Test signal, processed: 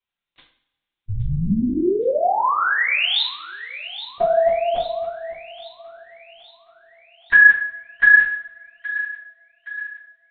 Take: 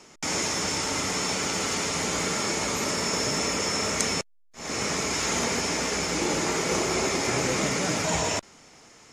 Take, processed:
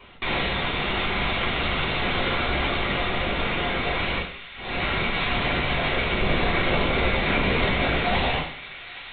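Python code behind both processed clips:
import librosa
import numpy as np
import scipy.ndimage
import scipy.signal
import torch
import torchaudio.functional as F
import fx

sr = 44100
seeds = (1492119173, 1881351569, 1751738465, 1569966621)

p1 = fx.high_shelf(x, sr, hz=2700.0, db=10.0)
p2 = fx.rider(p1, sr, range_db=4, speed_s=0.5)
p3 = fx.lpc_vocoder(p2, sr, seeds[0], excitation='whisper', order=10)
p4 = p3 + fx.echo_wet_highpass(p3, sr, ms=820, feedback_pct=55, hz=1600.0, wet_db=-12.5, dry=0)
p5 = fx.rev_double_slope(p4, sr, seeds[1], early_s=0.49, late_s=1.7, knee_db=-21, drr_db=-3.0)
y = p5 * 10.0 ** (-1.5 / 20.0)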